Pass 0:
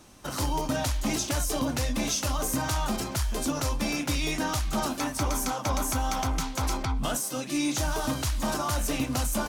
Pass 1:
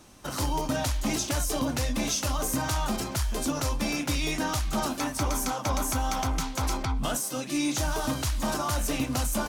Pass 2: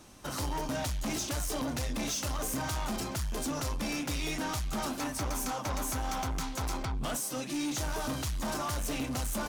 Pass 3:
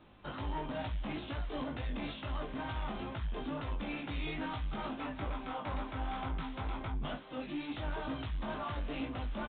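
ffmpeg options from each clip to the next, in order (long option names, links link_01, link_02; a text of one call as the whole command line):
ffmpeg -i in.wav -af anull out.wav
ffmpeg -i in.wav -af "asoftclip=type=tanh:threshold=-28.5dB,volume=-1dB" out.wav
ffmpeg -i in.wav -af "aecho=1:1:1100:0.075,flanger=delay=18:depth=2.3:speed=2.2,aresample=8000,aresample=44100,volume=-1.5dB" out.wav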